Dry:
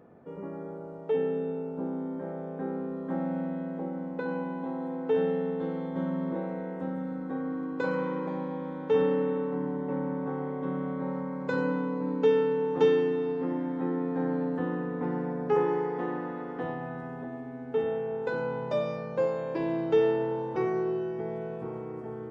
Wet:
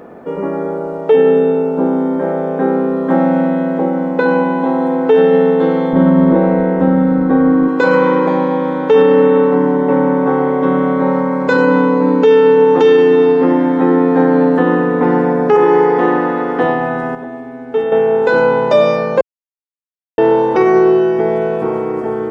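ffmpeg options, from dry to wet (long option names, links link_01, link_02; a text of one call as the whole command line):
ffmpeg -i in.wav -filter_complex "[0:a]asettb=1/sr,asplit=3[link_01][link_02][link_03];[link_01]atrim=end=5.934[link_04];[link_02]atrim=start=5.93:end=7.68,asetpts=PTS-STARTPTS,afade=type=in:duration=0.004:curve=qsin,afade=type=out:start_time=1.746:duration=0.004:curve=qsin,aemphasis=mode=reproduction:type=bsi[link_05];[link_03]atrim=start=7.676[link_06];[link_04][link_05]acrossfade=duration=0.004:curve1=hsin:curve2=qsin[link_07];[link_07][link_06]acrossfade=duration=0.004:curve1=qsin:curve2=hsin,asplit=5[link_08][link_09][link_10][link_11][link_12];[link_08]atrim=end=17.152[link_13];[link_09]atrim=start=17.148:end=17.922,asetpts=PTS-STARTPTS,volume=-8dB[link_14];[link_10]atrim=start=17.918:end=19.21,asetpts=PTS-STARTPTS,afade=type=out:start_time=1.288:duration=0.004:curve=hsin[link_15];[link_11]atrim=start=19.21:end=20.18,asetpts=PTS-STARTPTS,volume=0[link_16];[link_12]atrim=start=20.18,asetpts=PTS-STARTPTS,afade=type=in:duration=0.004:curve=hsin[link_17];[link_13][link_14]acrossfade=duration=0.004:curve1=hsin:curve2=hsin[link_18];[link_15][link_16][link_17]concat=n=3:v=0:a=1[link_19];[link_18][link_19]acrossfade=duration=0.004:curve1=hsin:curve2=hsin,equalizer=frequency=110:width_type=o:width=1.4:gain=-12.5,alimiter=level_in=22.5dB:limit=-1dB:release=50:level=0:latency=1,volume=-1dB" out.wav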